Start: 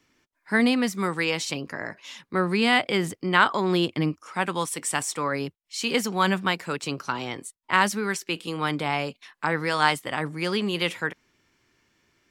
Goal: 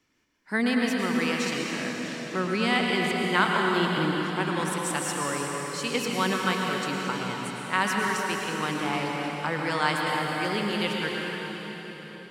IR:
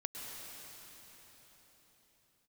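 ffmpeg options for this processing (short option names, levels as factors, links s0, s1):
-filter_complex "[1:a]atrim=start_sample=2205[s0];[0:a][s0]afir=irnorm=-1:irlink=0,volume=0.841"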